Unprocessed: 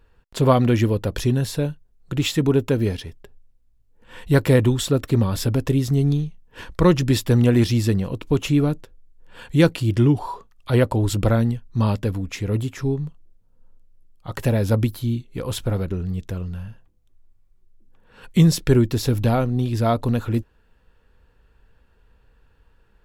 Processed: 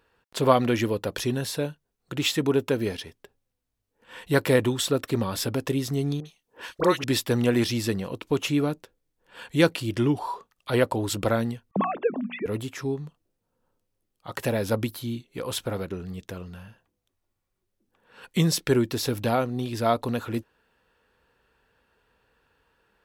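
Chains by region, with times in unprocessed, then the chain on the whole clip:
6.20–7.04 s: tone controls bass -9 dB, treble +3 dB + phase dispersion highs, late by 56 ms, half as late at 1.2 kHz
11.71–12.46 s: formants replaced by sine waves + low-pass 1.9 kHz 6 dB/octave + hum notches 60/120/180/240/300/360 Hz
whole clip: high-pass 410 Hz 6 dB/octave; band-stop 7.1 kHz, Q 24

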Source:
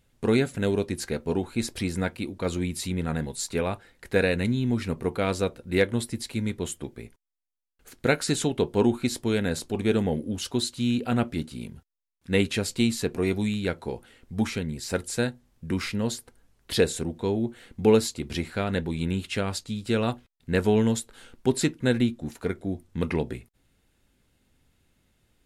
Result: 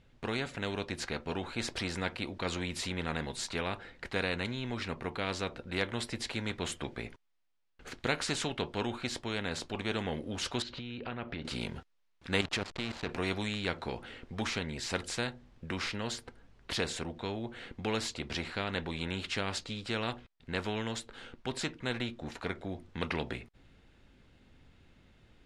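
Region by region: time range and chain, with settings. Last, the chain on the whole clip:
10.62–11.45 s: distance through air 220 m + compression 4:1, threshold -40 dBFS
12.41–13.09 s: level held to a coarse grid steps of 15 dB + hysteresis with a dead band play -37 dBFS
whole clip: low-pass 3.9 kHz 12 dB/octave; gain riding 2 s; spectrum-flattening compressor 2:1; trim -8.5 dB

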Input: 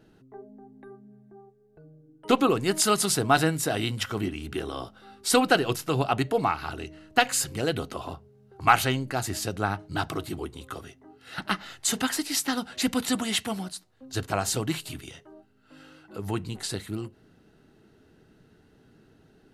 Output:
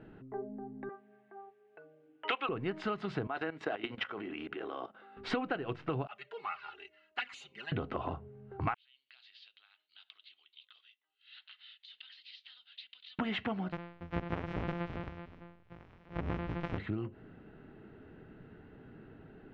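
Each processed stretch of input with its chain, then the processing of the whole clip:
0.89–2.49 s: high-pass 630 Hz + peaking EQ 2.9 kHz +13 dB 1.6 oct
3.27–5.17 s: high-pass 350 Hz + level held to a coarse grid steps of 15 dB
6.07–7.72 s: differentiator + comb 5 ms, depth 74% + touch-sensitive flanger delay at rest 3.4 ms, full sweep at -25.5 dBFS
8.74–13.19 s: compression 16:1, threshold -32 dBFS + Butterworth band-pass 3.8 kHz, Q 2.5
13.72–16.78 s: sorted samples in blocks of 256 samples + de-hum 172.3 Hz, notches 29
whole clip: low-pass 2.6 kHz 24 dB/octave; compression 12:1, threshold -36 dBFS; trim +4.5 dB

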